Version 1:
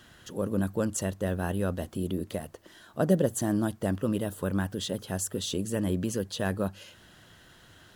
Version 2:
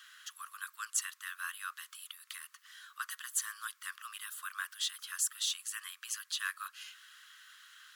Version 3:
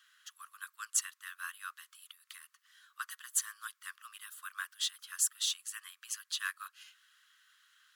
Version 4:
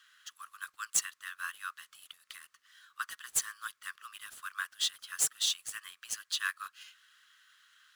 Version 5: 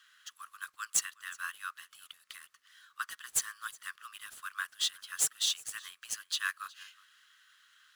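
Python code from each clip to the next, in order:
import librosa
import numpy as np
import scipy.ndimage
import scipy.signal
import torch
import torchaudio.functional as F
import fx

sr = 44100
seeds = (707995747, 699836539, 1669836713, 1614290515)

y1 = scipy.signal.sosfilt(scipy.signal.butter(16, 1100.0, 'highpass', fs=sr, output='sos'), x)
y1 = F.gain(torch.from_numpy(y1), 1.0).numpy()
y2 = fx.upward_expand(y1, sr, threshold_db=-55.0, expansion=1.5)
y2 = F.gain(torch.from_numpy(y2), 3.0).numpy()
y3 = scipy.signal.medfilt(y2, 3)
y3 = F.gain(torch.from_numpy(y3), 3.5).numpy()
y4 = y3 + 10.0 ** (-23.0 / 20.0) * np.pad(y3, (int(365 * sr / 1000.0), 0))[:len(y3)]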